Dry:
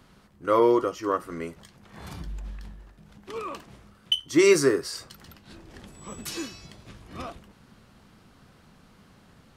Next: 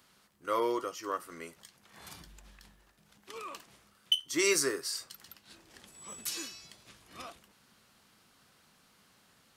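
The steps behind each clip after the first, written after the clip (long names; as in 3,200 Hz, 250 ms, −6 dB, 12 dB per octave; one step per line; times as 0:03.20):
spectral tilt +3 dB per octave
level −8 dB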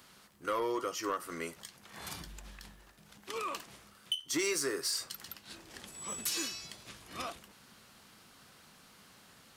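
downward compressor 6 to 1, threshold −34 dBFS, peak gain reduction 12 dB
soft clipping −30.5 dBFS, distortion −16 dB
level +6 dB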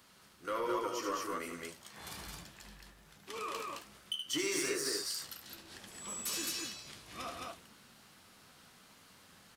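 on a send: loudspeakers that aren't time-aligned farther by 26 metres −6 dB, 62 metres −11 dB, 74 metres −2 dB
on the sum: flanger 1.2 Hz, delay 9 ms, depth 8.7 ms, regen −44%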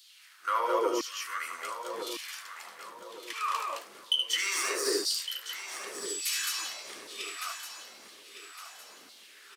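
auto-filter high-pass saw down 0.99 Hz 280–4,100 Hz
repeating echo 1,160 ms, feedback 37%, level −10.5 dB
level +4.5 dB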